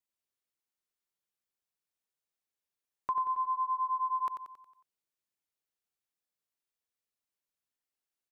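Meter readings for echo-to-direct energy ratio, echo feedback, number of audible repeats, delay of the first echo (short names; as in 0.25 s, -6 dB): -6.0 dB, 50%, 5, 91 ms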